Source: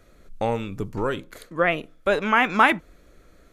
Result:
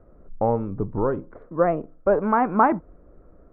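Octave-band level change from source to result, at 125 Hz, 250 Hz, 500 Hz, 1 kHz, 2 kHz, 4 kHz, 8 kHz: +3.0 dB, +3.0 dB, +3.0 dB, +0.5 dB, −11.5 dB, below −30 dB, below −30 dB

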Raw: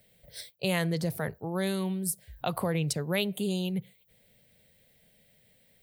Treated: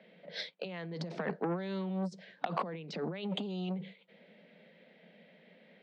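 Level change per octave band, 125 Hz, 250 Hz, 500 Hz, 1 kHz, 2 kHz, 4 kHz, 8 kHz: −8.5 dB, −6.0 dB, −6.0 dB, −1.0 dB, −8.0 dB, −7.0 dB, below −25 dB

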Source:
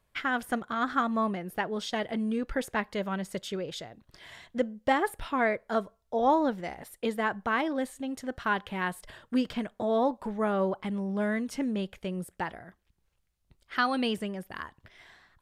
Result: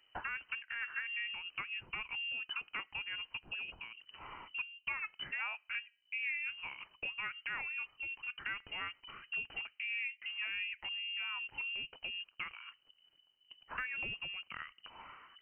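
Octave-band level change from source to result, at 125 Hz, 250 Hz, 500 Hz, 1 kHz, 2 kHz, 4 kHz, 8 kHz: −21.5 dB, −34.0 dB, −31.0 dB, −18.5 dB, −3.0 dB, −1.0 dB, below −30 dB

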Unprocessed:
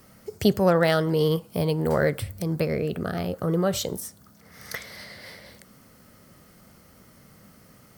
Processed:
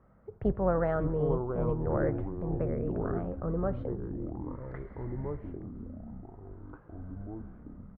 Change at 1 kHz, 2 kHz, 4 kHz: −7.0 dB, −14.5 dB, below −35 dB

